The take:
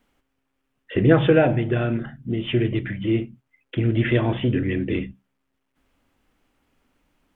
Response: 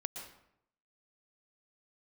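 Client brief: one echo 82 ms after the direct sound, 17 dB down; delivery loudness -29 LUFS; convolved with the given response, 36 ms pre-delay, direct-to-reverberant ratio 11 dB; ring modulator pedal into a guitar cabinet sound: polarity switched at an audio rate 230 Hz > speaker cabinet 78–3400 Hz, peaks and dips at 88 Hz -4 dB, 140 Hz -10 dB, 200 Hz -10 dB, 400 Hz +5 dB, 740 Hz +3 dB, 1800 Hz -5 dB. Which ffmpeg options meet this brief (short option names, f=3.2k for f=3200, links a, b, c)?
-filter_complex "[0:a]aecho=1:1:82:0.141,asplit=2[a][b];[1:a]atrim=start_sample=2205,adelay=36[c];[b][c]afir=irnorm=-1:irlink=0,volume=-10.5dB[d];[a][d]amix=inputs=2:normalize=0,aeval=exprs='val(0)*sgn(sin(2*PI*230*n/s))':c=same,highpass=78,equalizer=f=88:t=q:w=4:g=-4,equalizer=f=140:t=q:w=4:g=-10,equalizer=f=200:t=q:w=4:g=-10,equalizer=f=400:t=q:w=4:g=5,equalizer=f=740:t=q:w=4:g=3,equalizer=f=1.8k:t=q:w=4:g=-5,lowpass=f=3.4k:w=0.5412,lowpass=f=3.4k:w=1.3066,volume=-7.5dB"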